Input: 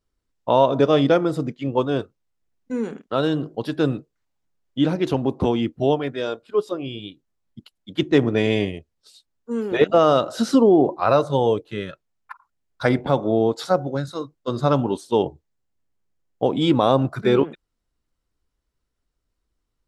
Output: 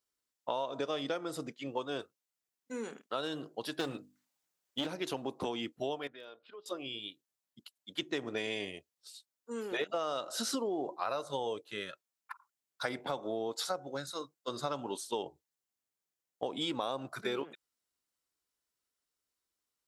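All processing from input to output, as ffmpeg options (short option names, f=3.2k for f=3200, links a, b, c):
-filter_complex "[0:a]asettb=1/sr,asplit=3[a][b][c];[a]atrim=end=3.794[d];[b]atrim=start=3.79:end=4.87,asetpts=PTS-STARTPTS,afade=t=in:d=0.004:c=qsin,afade=t=out:st=1.076:d=0.004:c=qsin,aeval=exprs='clip(val(0),-1,0.075)':c=same,bandreject=f=50:t=h:w=6,bandreject=f=100:t=h:w=6,bandreject=f=150:t=h:w=6,bandreject=f=200:t=h:w=6,bandreject=f=250:t=h:w=6,bandreject=f=300:t=h:w=6,acontrast=38[e];[c]atrim=start=4.866[f];[d][e]acrossfade=d=0.004:c1=hsin:c2=qsin[g];[g][f]acrossfade=d=0.004:c1=qsin:c2=hsin,asettb=1/sr,asplit=3[h][i][j];[h]atrim=end=6.074[k];[i]atrim=start=6.07:end=6.66,asetpts=PTS-STARTPTS,afade=t=in:d=0.004:c=qsin,afade=t=out:st=0.586:d=0.004:c=qsin,lowpass=f=4k:w=0.5412,lowpass=f=4k:w=1.3066,acompressor=threshold=-38dB:ratio=4:attack=3.2:release=140:knee=1:detection=peak,volume=29.5dB,asoftclip=hard,volume=-29.5dB[l];[j]atrim=start=6.656[m];[k][l]acrossfade=d=0.004:c1=hsin:c2=qsin[n];[n][m]acrossfade=d=0.004:c1=qsin:c2=hsin,highpass=f=700:p=1,highshelf=f=4.9k:g=10.5,acompressor=threshold=-25dB:ratio=6,volume=-6.5dB"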